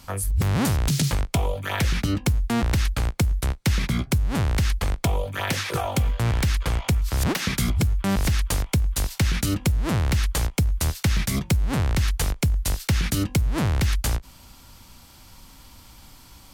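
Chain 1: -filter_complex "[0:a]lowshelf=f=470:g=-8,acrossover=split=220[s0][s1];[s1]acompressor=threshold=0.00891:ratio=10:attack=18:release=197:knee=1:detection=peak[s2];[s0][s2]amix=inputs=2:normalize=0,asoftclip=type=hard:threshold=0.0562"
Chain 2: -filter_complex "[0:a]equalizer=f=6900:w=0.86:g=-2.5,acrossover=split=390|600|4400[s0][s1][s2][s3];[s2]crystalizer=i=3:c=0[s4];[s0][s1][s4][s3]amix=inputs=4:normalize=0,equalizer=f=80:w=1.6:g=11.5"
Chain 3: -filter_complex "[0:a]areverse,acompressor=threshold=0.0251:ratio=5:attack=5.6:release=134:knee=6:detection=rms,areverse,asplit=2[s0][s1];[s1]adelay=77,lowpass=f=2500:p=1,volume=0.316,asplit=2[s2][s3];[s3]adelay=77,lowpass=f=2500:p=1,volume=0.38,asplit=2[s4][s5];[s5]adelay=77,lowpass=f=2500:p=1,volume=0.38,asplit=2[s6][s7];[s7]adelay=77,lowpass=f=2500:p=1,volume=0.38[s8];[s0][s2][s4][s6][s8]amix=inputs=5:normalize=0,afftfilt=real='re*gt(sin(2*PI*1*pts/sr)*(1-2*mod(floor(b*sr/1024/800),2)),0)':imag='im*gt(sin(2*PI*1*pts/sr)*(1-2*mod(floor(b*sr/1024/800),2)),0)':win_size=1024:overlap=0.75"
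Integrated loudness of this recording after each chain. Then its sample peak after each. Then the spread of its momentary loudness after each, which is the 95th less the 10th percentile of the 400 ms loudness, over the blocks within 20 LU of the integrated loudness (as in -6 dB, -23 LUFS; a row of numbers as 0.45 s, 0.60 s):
-33.5 LUFS, -18.5 LUFS, -38.5 LUFS; -25.0 dBFS, -4.0 dBFS, -23.5 dBFS; 17 LU, 5 LU, 15 LU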